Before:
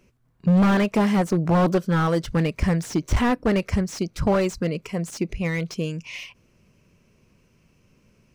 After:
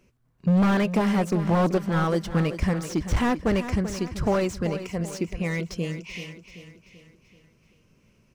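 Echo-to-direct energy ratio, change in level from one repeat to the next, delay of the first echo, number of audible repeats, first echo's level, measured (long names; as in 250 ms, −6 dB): −10.5 dB, −6.5 dB, 385 ms, 4, −11.5 dB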